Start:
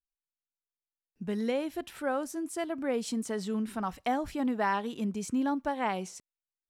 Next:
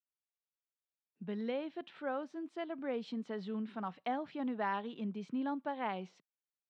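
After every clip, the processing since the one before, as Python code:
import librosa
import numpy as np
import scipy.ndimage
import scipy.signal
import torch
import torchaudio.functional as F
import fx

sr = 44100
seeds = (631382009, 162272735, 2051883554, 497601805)

y = scipy.signal.sosfilt(scipy.signal.cheby1(3, 1.0, [160.0, 3700.0], 'bandpass', fs=sr, output='sos'), x)
y = y * librosa.db_to_amplitude(-6.5)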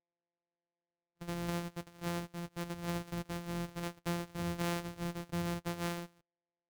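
y = np.r_[np.sort(x[:len(x) // 256 * 256].reshape(-1, 256), axis=1).ravel(), x[len(x) // 256 * 256:]]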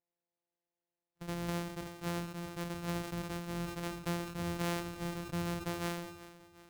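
y = fx.echo_feedback(x, sr, ms=369, feedback_pct=49, wet_db=-15.5)
y = fx.sustainer(y, sr, db_per_s=65.0)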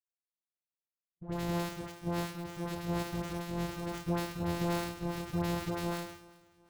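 y = scipy.signal.medfilt(x, 25)
y = fx.dispersion(y, sr, late='highs', ms=113.0, hz=870.0)
y = fx.power_curve(y, sr, exponent=1.4)
y = y * librosa.db_to_amplitude(6.5)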